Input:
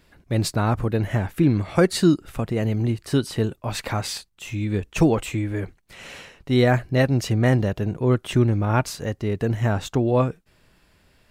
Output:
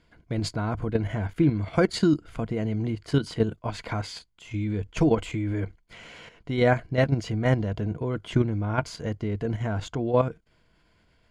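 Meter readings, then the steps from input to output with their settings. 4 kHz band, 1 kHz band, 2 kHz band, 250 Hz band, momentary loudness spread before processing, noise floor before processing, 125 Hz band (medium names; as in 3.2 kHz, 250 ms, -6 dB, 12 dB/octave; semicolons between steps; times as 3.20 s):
-5.5 dB, -4.0 dB, -4.0 dB, -4.0 dB, 9 LU, -61 dBFS, -5.0 dB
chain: rippled EQ curve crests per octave 1.8, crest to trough 7 dB; level held to a coarse grid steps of 9 dB; distance through air 71 m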